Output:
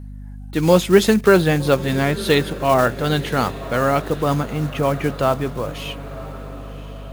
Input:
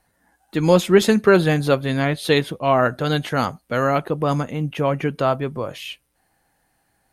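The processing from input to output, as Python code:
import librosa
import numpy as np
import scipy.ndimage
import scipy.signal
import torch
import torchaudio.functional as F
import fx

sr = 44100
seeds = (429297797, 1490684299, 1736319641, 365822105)

y = fx.block_float(x, sr, bits=5)
y = fx.echo_diffused(y, sr, ms=1053, feedback_pct=50, wet_db=-15.5)
y = fx.add_hum(y, sr, base_hz=50, snr_db=15)
y = y * librosa.db_to_amplitude(1.0)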